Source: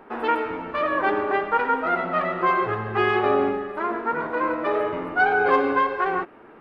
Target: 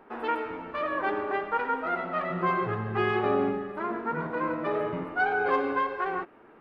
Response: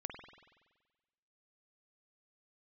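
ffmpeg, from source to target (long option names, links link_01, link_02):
-filter_complex "[0:a]asettb=1/sr,asplit=3[link_01][link_02][link_03];[link_01]atrim=end=2.304[link_04];[link_02]atrim=start=2.3:end=5.04,asetpts=PTS-STARTPTS,afade=type=in:duration=0.004:curve=qsin,afade=type=out:start_time=2.736:duration=0.004:curve=qsin,equalizer=frequency=160:width_type=o:width=0.98:gain=13[link_05];[link_03]atrim=start=5.036[link_06];[link_04][link_05]acrossfade=duration=0.004:curve1=hsin:curve2=qsin[link_07];[link_07][link_06]acrossfade=duration=0.004:curve1=qsin:curve2=hsin,volume=-6.5dB"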